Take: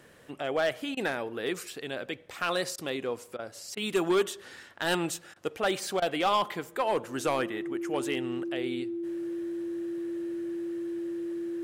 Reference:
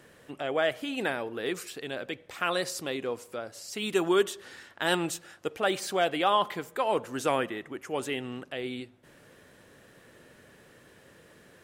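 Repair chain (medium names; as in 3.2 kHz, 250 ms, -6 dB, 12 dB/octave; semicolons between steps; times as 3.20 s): clip repair -20 dBFS; band-stop 340 Hz, Q 30; interpolate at 0.95/2.76/3.37/3.75/5.34/6.00 s, 19 ms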